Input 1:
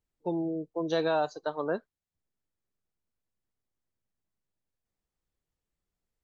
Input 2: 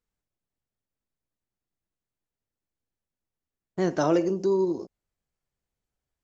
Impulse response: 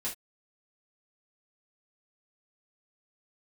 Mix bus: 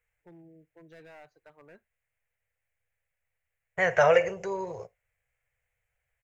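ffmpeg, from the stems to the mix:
-filter_complex "[0:a]lowpass=3700,asoftclip=type=hard:threshold=-24.5dB,volume=-16dB,asplit=2[link_01][link_02];[link_02]volume=-22.5dB[link_03];[1:a]firequalizer=gain_entry='entry(110,0);entry(290,-30);entry(470,10);entry(1200,5);entry(2200,11);entry(4700,-8);entry(6800,0)':delay=0.05:min_phase=1,volume=3dB,asplit=2[link_04][link_05];[link_05]volume=-20.5dB[link_06];[2:a]atrim=start_sample=2205[link_07];[link_03][link_06]amix=inputs=2:normalize=0[link_08];[link_08][link_07]afir=irnorm=-1:irlink=0[link_09];[link_01][link_04][link_09]amix=inputs=3:normalize=0,equalizer=frequency=125:width_type=o:width=1:gain=4,equalizer=frequency=250:width_type=o:width=1:gain=-7,equalizer=frequency=500:width_type=o:width=1:gain=-5,equalizer=frequency=1000:width_type=o:width=1:gain=-8,equalizer=frequency=2000:width_type=o:width=1:gain=7,equalizer=frequency=4000:width_type=o:width=1:gain=-9"

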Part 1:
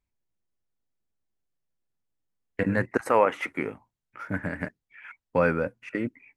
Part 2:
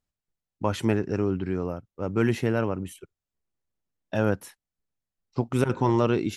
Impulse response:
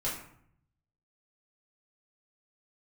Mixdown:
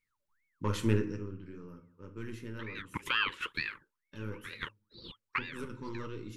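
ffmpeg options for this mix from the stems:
-filter_complex "[0:a]acompressor=threshold=-29dB:ratio=2,aeval=exprs='val(0)*sin(2*PI*1400*n/s+1400*0.6/2.2*sin(2*PI*2.2*n/s))':channel_layout=same,volume=0dB[link_01];[1:a]highshelf=frequency=4300:gain=4.5,flanger=delay=6:depth=6.1:regen=-50:speed=1.8:shape=sinusoidal,aeval=exprs='0.237*(cos(1*acos(clip(val(0)/0.237,-1,1)))-cos(1*PI/2))+0.0133*(cos(6*acos(clip(val(0)/0.237,-1,1)))-cos(6*PI/2))':channel_layout=same,volume=-4.5dB,afade=type=out:start_time=0.96:duration=0.24:silence=0.237137,asplit=3[link_02][link_03][link_04];[link_03]volume=-9dB[link_05];[link_04]apad=whole_len=280747[link_06];[link_01][link_06]sidechaincompress=threshold=-57dB:ratio=5:attack=41:release=306[link_07];[2:a]atrim=start_sample=2205[link_08];[link_05][link_08]afir=irnorm=-1:irlink=0[link_09];[link_07][link_02][link_09]amix=inputs=3:normalize=0,asuperstop=centerf=700:order=4:qfactor=1.6"

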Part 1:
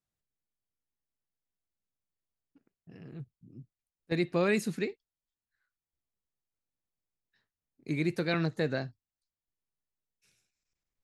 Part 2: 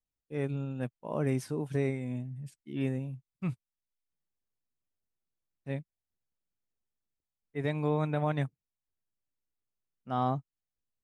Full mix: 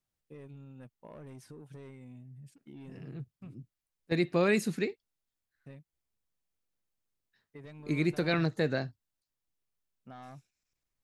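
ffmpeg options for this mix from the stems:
ffmpeg -i stem1.wav -i stem2.wav -filter_complex "[0:a]volume=1dB[link_01];[1:a]asoftclip=type=tanh:threshold=-29dB,acompressor=threshold=-45dB:ratio=5,volume=-2.5dB[link_02];[link_01][link_02]amix=inputs=2:normalize=0" out.wav

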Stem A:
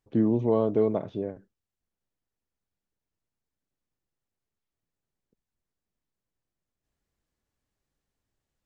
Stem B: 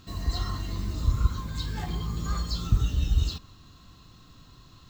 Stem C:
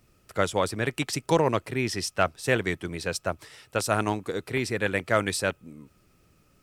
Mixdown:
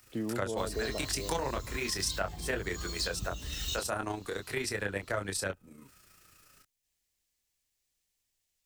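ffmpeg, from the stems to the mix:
ffmpeg -i stem1.wav -i stem2.wav -i stem3.wav -filter_complex "[0:a]volume=-5.5dB[link_01];[1:a]adelay=500,volume=-4dB[link_02];[2:a]firequalizer=gain_entry='entry(550,0);entry(1500,11);entry(2200,-3)':delay=0.05:min_phase=1,flanger=delay=20:depth=2.7:speed=0.41,tremolo=f=28:d=0.462,volume=2dB[link_03];[link_01][link_02][link_03]amix=inputs=3:normalize=0,equalizer=frequency=190:width=0.56:gain=-6,acrossover=split=180|840[link_04][link_05][link_06];[link_04]acompressor=threshold=-40dB:ratio=4[link_07];[link_05]acompressor=threshold=-32dB:ratio=4[link_08];[link_06]acompressor=threshold=-45dB:ratio=4[link_09];[link_07][link_08][link_09]amix=inputs=3:normalize=0,aexciter=amount=3.8:drive=5.5:freq=2000" out.wav

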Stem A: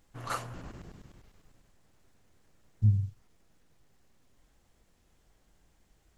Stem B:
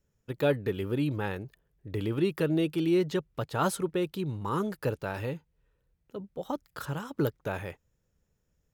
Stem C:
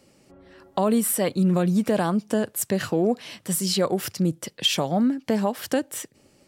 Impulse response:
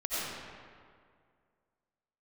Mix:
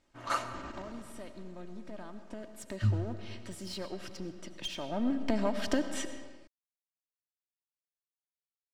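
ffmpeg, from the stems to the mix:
-filter_complex "[0:a]lowshelf=frequency=150:gain=-11.5,adynamicsmooth=sensitivity=4:basefreq=7700,volume=-3dB,asplit=2[link_01][link_02];[link_02]volume=-19.5dB[link_03];[2:a]lowpass=5200,acompressor=threshold=-36dB:ratio=2,aeval=exprs='clip(val(0),-1,0.02)':channel_layout=same,volume=-5.5dB,afade=type=in:start_time=2.13:duration=0.66:silence=0.473151,afade=type=in:start_time=4.79:duration=0.36:silence=0.334965,asplit=2[link_04][link_05];[link_05]volume=-14.5dB[link_06];[3:a]atrim=start_sample=2205[link_07];[link_03][link_06]amix=inputs=2:normalize=0[link_08];[link_08][link_07]afir=irnorm=-1:irlink=0[link_09];[link_01][link_04][link_09]amix=inputs=3:normalize=0,equalizer=frequency=400:width_type=o:width=0.77:gain=-2,aecho=1:1:3.2:0.51,dynaudnorm=framelen=120:gausssize=5:maxgain=7dB"

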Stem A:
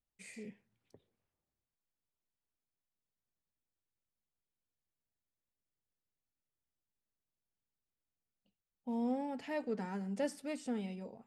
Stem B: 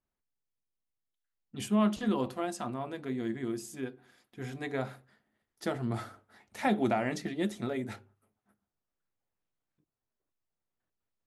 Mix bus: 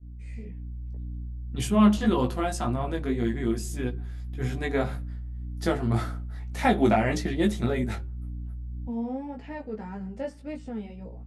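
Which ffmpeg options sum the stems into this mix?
ffmpeg -i stem1.wav -i stem2.wav -filter_complex "[0:a]aemphasis=mode=reproduction:type=75kf,volume=-1.5dB,asplit=2[link_01][link_02];[1:a]aeval=exprs='val(0)+0.00501*(sin(2*PI*60*n/s)+sin(2*PI*2*60*n/s)/2+sin(2*PI*3*60*n/s)/3+sin(2*PI*4*60*n/s)/4+sin(2*PI*5*60*n/s)/5)':channel_layout=same,agate=range=-33dB:threshold=-45dB:ratio=3:detection=peak,volume=2.5dB[link_03];[link_02]apad=whole_len=496995[link_04];[link_03][link_04]sidechaincompress=threshold=-48dB:ratio=8:attack=16:release=710[link_05];[link_01][link_05]amix=inputs=2:normalize=0,lowshelf=frequency=71:gain=10.5,flanger=delay=16.5:depth=2.3:speed=1.8,dynaudnorm=framelen=170:gausssize=3:maxgain=7dB" out.wav

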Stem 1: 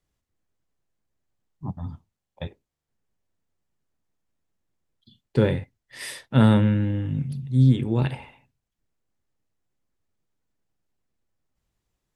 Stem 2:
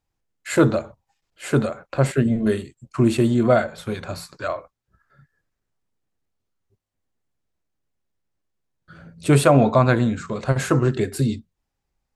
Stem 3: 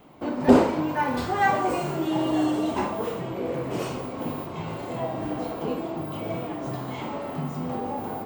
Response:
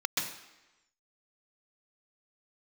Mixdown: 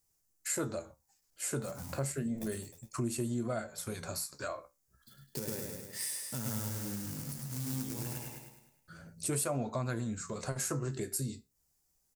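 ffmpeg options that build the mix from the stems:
-filter_complex "[0:a]lowshelf=frequency=62:gain=-9,acrusher=bits=3:mode=log:mix=0:aa=0.000001,volume=-3.5dB,asplit=2[link_01][link_02];[link_02]volume=-7dB[link_03];[1:a]volume=-3.5dB[link_04];[link_01]acompressor=threshold=-34dB:ratio=2.5,volume=0dB[link_05];[link_03]aecho=0:1:103|206|309|412|515|618|721:1|0.5|0.25|0.125|0.0625|0.0312|0.0156[link_06];[link_04][link_05][link_06]amix=inputs=3:normalize=0,aexciter=amount=6.4:drive=4.2:freq=4900,flanger=delay=8.2:depth=7.5:regen=59:speed=0.31:shape=sinusoidal,acompressor=threshold=-37dB:ratio=2.5"

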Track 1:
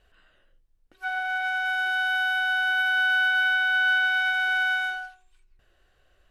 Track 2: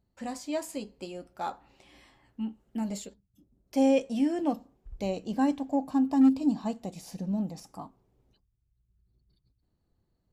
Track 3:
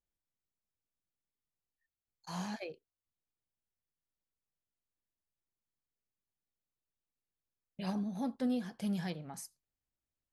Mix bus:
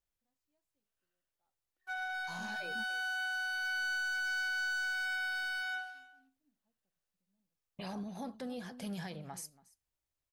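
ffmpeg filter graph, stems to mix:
ffmpeg -i stem1.wav -i stem2.wav -i stem3.wav -filter_complex "[0:a]agate=range=-23dB:threshold=-53dB:ratio=16:detection=peak,highpass=frequency=200:poles=1,asoftclip=type=hard:threshold=-25.5dB,adelay=850,volume=-8.5dB,asplit=2[link_01][link_02];[link_02]volume=-18dB[link_03];[1:a]volume=-17.5dB[link_04];[2:a]volume=2dB,asplit=3[link_05][link_06][link_07];[link_06]volume=-22.5dB[link_08];[link_07]apad=whole_len=455128[link_09];[link_04][link_09]sidechaingate=range=-36dB:threshold=-54dB:ratio=16:detection=peak[link_10];[link_01][link_05]amix=inputs=2:normalize=0,equalizer=frequency=230:width_type=o:width=0.96:gain=-8,alimiter=level_in=9.5dB:limit=-24dB:level=0:latency=1:release=31,volume=-9.5dB,volume=0dB[link_11];[link_03][link_08]amix=inputs=2:normalize=0,aecho=0:1:281:1[link_12];[link_10][link_11][link_12]amix=inputs=3:normalize=0" out.wav

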